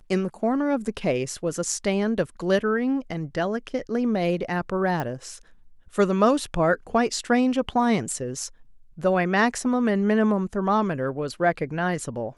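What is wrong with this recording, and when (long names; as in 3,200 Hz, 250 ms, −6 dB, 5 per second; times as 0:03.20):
0:05.00: click −16 dBFS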